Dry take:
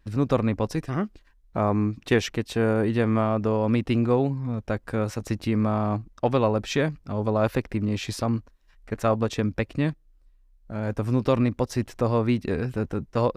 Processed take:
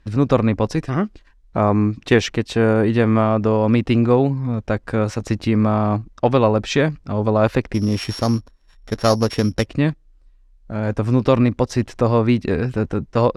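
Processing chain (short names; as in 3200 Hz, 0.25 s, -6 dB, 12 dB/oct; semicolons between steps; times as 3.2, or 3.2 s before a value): 7.74–9.66 sample sorter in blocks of 8 samples; LPF 7900 Hz 12 dB/oct; gain +6.5 dB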